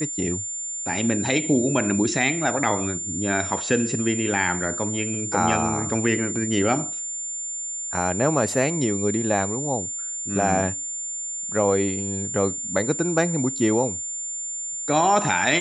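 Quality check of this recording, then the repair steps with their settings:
whistle 7,200 Hz −28 dBFS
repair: notch filter 7,200 Hz, Q 30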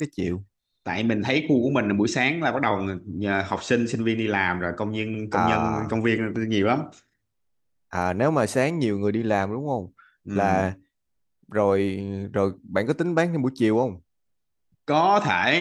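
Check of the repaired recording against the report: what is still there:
none of them is left

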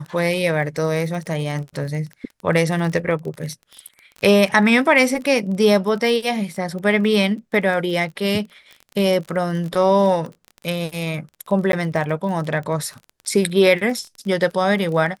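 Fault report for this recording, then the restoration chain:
surface crackle 24 per second −28 dBFS
0:11.72–0:11.73: drop-out 12 ms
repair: click removal
repair the gap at 0:11.72, 12 ms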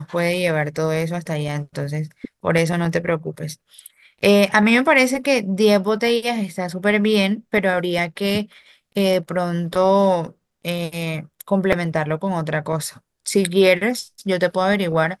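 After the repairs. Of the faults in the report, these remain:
none of them is left

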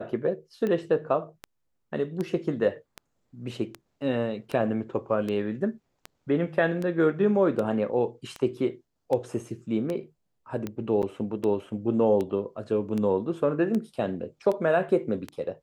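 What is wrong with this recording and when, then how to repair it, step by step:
scratch tick 78 rpm −19 dBFS
0:11.02–0:11.03: drop-out 8.4 ms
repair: click removal
repair the gap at 0:11.02, 8.4 ms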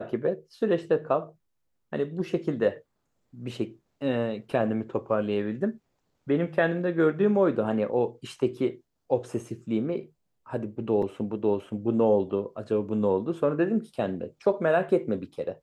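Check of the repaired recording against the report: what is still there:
none of them is left

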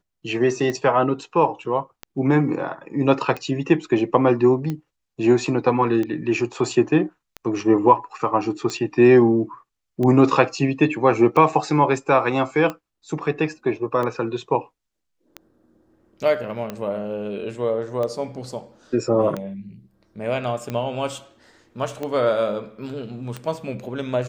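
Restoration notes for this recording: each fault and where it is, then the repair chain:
scratch tick 45 rpm −15 dBFS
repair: click removal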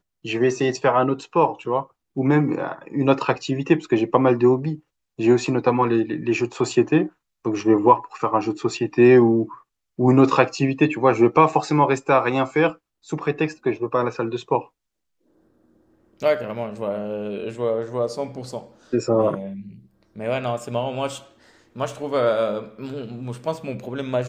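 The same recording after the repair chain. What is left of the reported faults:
none of them is left

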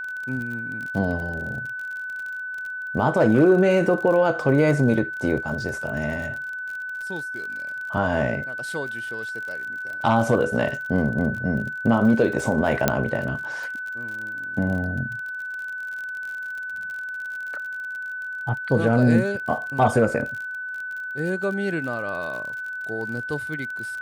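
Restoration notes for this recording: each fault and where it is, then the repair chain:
surface crackle 42 per second −31 dBFS
whistle 1,500 Hz −29 dBFS
0:12.88: click −3 dBFS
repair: click removal
notch filter 1,500 Hz, Q 30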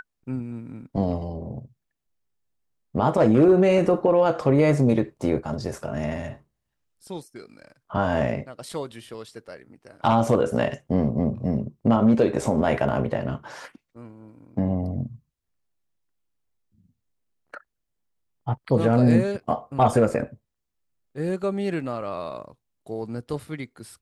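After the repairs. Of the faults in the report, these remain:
0:12.88: click

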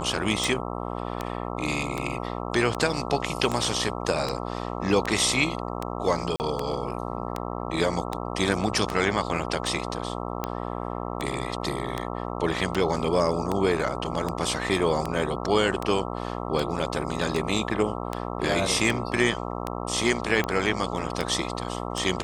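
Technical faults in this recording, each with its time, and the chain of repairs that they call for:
mains buzz 60 Hz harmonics 22 −32 dBFS
scratch tick 78 rpm
0:06.36–0:06.40: drop-out 39 ms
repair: click removal
hum removal 60 Hz, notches 22
repair the gap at 0:06.36, 39 ms

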